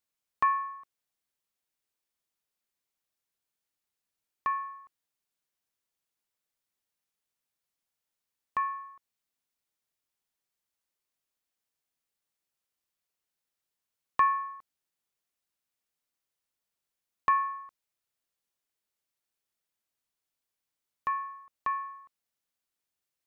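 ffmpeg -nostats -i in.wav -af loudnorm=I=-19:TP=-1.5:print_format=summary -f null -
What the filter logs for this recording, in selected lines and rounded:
Input Integrated:    -32.2 LUFS
Input True Peak:     -13.8 dBTP
Input LRA:             6.3 LU
Input Threshold:     -43.3 LUFS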